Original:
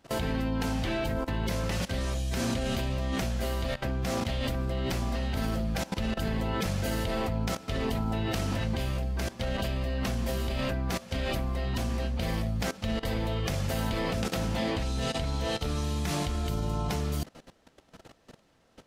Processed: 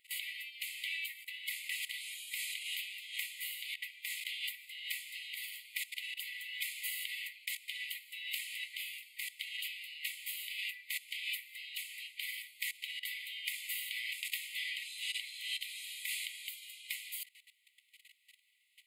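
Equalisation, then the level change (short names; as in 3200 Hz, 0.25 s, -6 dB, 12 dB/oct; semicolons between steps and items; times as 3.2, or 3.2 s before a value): brick-wall FIR high-pass 1900 Hz; bell 3300 Hz -6 dB 1.5 oct; fixed phaser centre 2500 Hz, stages 4; +7.0 dB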